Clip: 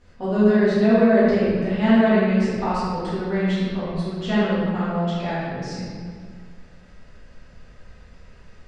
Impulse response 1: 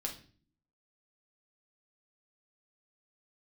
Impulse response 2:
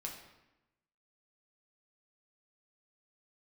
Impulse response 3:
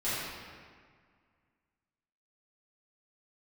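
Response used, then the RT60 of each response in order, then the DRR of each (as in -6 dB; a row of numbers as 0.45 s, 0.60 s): 3; 0.45 s, 0.95 s, 1.8 s; 0.5 dB, -1.0 dB, -14.0 dB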